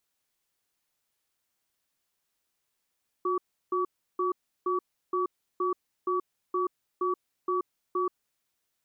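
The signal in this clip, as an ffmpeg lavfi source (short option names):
-f lavfi -i "aevalsrc='0.0422*(sin(2*PI*363*t)+sin(2*PI*1140*t))*clip(min(mod(t,0.47),0.13-mod(t,0.47))/0.005,0,1)':d=5.02:s=44100"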